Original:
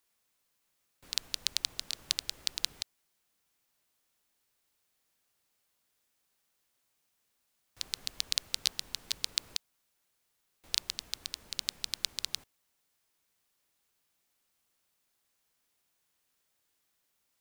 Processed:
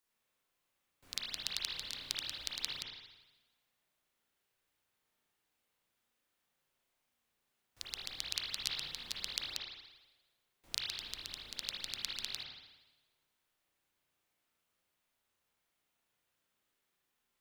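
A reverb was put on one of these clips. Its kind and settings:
spring reverb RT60 1.1 s, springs 34/55 ms, chirp 25 ms, DRR −5.5 dB
level −7.5 dB

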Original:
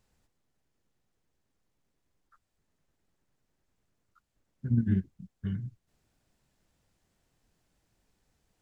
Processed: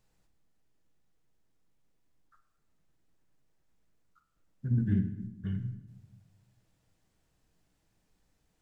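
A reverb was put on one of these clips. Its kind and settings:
rectangular room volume 360 cubic metres, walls mixed, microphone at 0.59 metres
level −2 dB

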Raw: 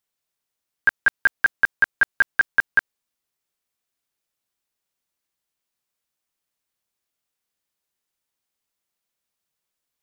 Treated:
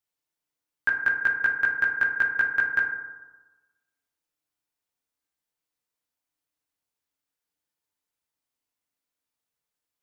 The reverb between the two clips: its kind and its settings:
feedback delay network reverb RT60 1.2 s, low-frequency decay 1×, high-frequency decay 0.3×, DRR 1 dB
level −6.5 dB

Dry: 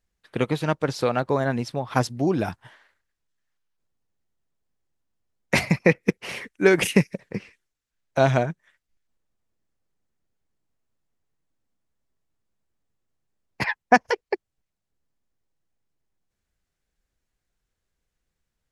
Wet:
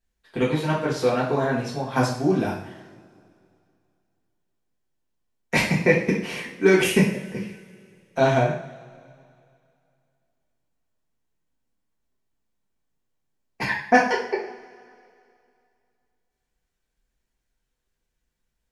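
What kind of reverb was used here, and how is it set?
coupled-rooms reverb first 0.52 s, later 2.5 s, from −21 dB, DRR −6 dB
level −6 dB

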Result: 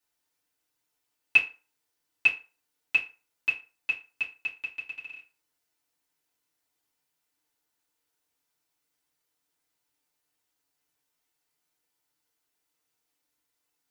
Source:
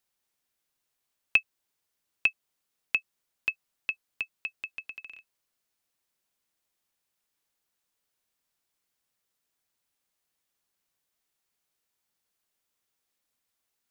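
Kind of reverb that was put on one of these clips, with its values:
feedback delay network reverb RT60 0.34 s, low-frequency decay 0.8×, high-frequency decay 0.75×, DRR −7 dB
level −6 dB

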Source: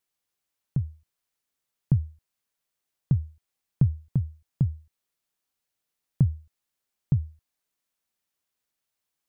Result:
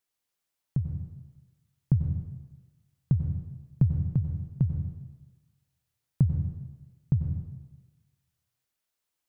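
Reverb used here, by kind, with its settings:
dense smooth reverb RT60 1.2 s, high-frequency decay 0.95×, pre-delay 80 ms, DRR 5 dB
level −1.5 dB

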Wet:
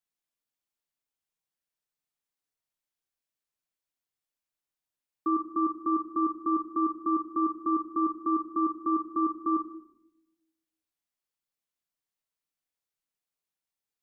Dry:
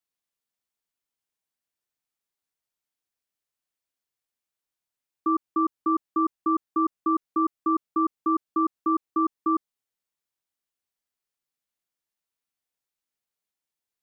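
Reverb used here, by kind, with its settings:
rectangular room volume 220 cubic metres, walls mixed, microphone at 0.48 metres
level −4 dB

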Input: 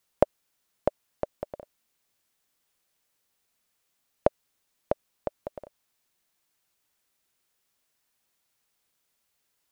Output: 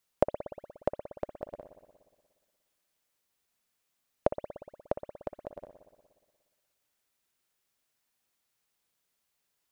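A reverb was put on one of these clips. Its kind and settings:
spring reverb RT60 1.6 s, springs 59 ms, chirp 35 ms, DRR 8.5 dB
level −4 dB

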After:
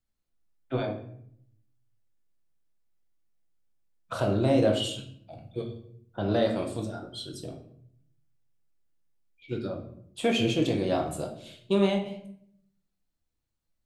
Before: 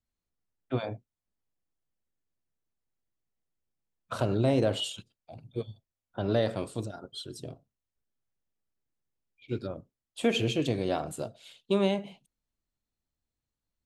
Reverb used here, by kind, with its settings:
rectangular room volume 120 cubic metres, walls mixed, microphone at 0.66 metres

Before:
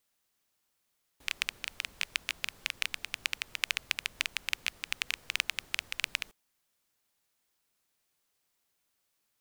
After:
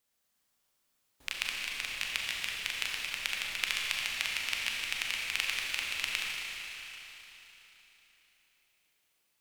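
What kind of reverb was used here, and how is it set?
four-comb reverb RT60 3.8 s, combs from 29 ms, DRR −2.5 dB
level −2.5 dB

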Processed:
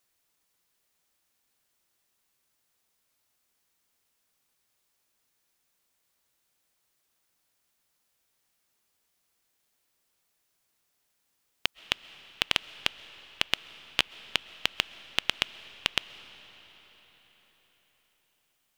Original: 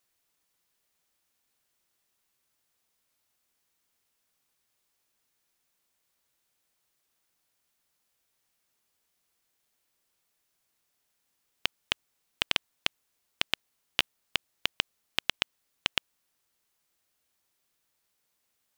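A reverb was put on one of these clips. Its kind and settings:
comb and all-pass reverb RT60 5 s, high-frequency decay 0.85×, pre-delay 90 ms, DRR 16 dB
level +1.5 dB

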